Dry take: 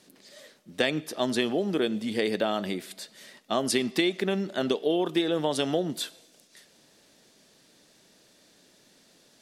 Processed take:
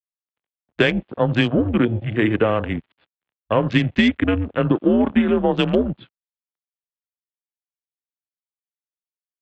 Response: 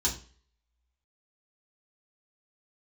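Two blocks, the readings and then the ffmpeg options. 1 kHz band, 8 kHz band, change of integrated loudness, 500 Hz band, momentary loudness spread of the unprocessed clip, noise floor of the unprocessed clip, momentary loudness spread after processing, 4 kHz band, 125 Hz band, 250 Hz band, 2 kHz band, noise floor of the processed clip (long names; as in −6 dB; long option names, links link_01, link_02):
+7.0 dB, below −15 dB, +8.0 dB, +6.0 dB, 9 LU, −61 dBFS, 5 LU, +1.5 dB, +15.5 dB, +10.0 dB, +9.0 dB, below −85 dBFS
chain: -af "bandreject=frequency=232:width_type=h:width=4,bandreject=frequency=464:width_type=h:width=4,bandreject=frequency=696:width_type=h:width=4,bandreject=frequency=928:width_type=h:width=4,bandreject=frequency=1160:width_type=h:width=4,bandreject=frequency=1392:width_type=h:width=4,bandreject=frequency=1624:width_type=h:width=4,bandreject=frequency=1856:width_type=h:width=4,bandreject=frequency=2088:width_type=h:width=4,bandreject=frequency=2320:width_type=h:width=4,bandreject=frequency=2552:width_type=h:width=4,bandreject=frequency=2784:width_type=h:width=4,bandreject=frequency=3016:width_type=h:width=4,bandreject=frequency=3248:width_type=h:width=4,bandreject=frequency=3480:width_type=h:width=4,bandreject=frequency=3712:width_type=h:width=4,bandreject=frequency=3944:width_type=h:width=4,bandreject=frequency=4176:width_type=h:width=4,bandreject=frequency=4408:width_type=h:width=4,bandreject=frequency=4640:width_type=h:width=4,bandreject=frequency=4872:width_type=h:width=4,bandreject=frequency=5104:width_type=h:width=4,bandreject=frequency=5336:width_type=h:width=4,bandreject=frequency=5568:width_type=h:width=4,bandreject=frequency=5800:width_type=h:width=4,bandreject=frequency=6032:width_type=h:width=4,bandreject=frequency=6264:width_type=h:width=4,bandreject=frequency=6496:width_type=h:width=4,aresample=11025,aeval=exprs='sgn(val(0))*max(abs(val(0))-0.00841,0)':channel_layout=same,aresample=44100,highpass=frequency=200:width_type=q:width=0.5412,highpass=frequency=200:width_type=q:width=1.307,lowpass=frequency=3300:width_type=q:width=0.5176,lowpass=frequency=3300:width_type=q:width=0.7071,lowpass=frequency=3300:width_type=q:width=1.932,afreqshift=-110,apsyclip=16.5dB,afwtdn=0.0708,volume=-6dB"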